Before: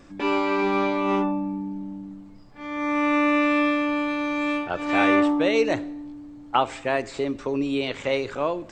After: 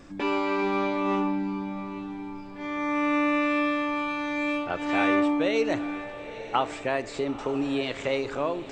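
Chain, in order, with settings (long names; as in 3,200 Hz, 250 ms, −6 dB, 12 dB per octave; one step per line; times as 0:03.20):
in parallel at +2.5 dB: downward compressor, threshold −30 dBFS, peak gain reduction 14 dB
on the sum: feedback delay with all-pass diffusion 915 ms, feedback 42%, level −12.5 dB
level −6.5 dB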